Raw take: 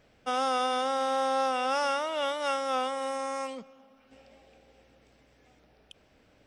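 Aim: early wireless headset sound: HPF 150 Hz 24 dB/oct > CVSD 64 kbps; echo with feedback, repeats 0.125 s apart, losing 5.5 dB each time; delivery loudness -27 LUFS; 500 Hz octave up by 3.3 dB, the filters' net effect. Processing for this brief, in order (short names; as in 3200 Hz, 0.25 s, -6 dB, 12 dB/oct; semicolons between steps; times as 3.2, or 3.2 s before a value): HPF 150 Hz 24 dB/oct; bell 500 Hz +3.5 dB; feedback echo 0.125 s, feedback 53%, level -5.5 dB; CVSD 64 kbps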